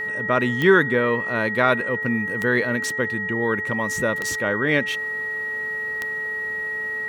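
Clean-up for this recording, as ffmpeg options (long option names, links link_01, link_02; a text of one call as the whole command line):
ffmpeg -i in.wav -af "adeclick=threshold=4,bandreject=frequency=433.3:width_type=h:width=4,bandreject=frequency=866.6:width_type=h:width=4,bandreject=frequency=1299.9:width_type=h:width=4,bandreject=frequency=1900:width=30" out.wav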